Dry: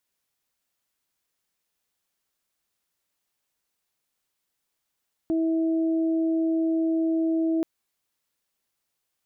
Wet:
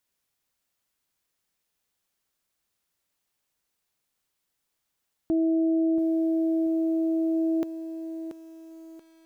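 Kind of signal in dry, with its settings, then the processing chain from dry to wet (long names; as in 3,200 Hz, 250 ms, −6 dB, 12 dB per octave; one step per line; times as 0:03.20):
steady harmonic partials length 2.33 s, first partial 325 Hz, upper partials −13 dB, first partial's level −21 dB
low-shelf EQ 190 Hz +3 dB
feedback echo at a low word length 682 ms, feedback 35%, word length 9 bits, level −10 dB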